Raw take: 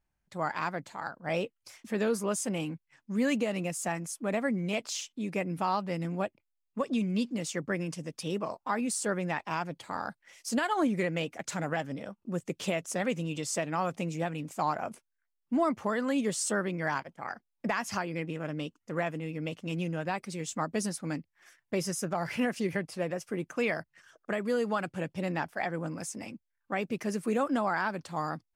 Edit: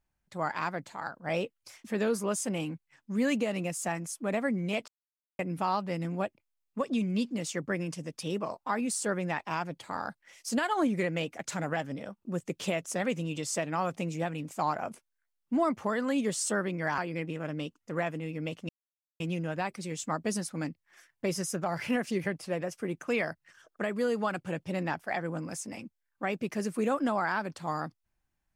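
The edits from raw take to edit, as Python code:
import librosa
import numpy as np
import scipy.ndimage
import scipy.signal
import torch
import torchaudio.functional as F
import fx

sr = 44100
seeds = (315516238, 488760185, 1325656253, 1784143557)

y = fx.edit(x, sr, fx.silence(start_s=4.88, length_s=0.51),
    fx.cut(start_s=16.98, length_s=1.0),
    fx.insert_silence(at_s=19.69, length_s=0.51), tone=tone)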